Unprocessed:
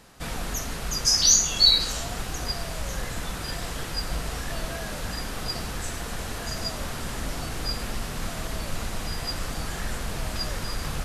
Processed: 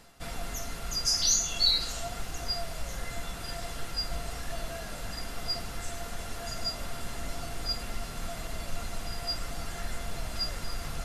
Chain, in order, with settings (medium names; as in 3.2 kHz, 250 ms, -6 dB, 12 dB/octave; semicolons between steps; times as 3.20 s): reverse; upward compressor, threshold -34 dBFS; reverse; feedback comb 690 Hz, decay 0.15 s, harmonics all, mix 80%; trim +5 dB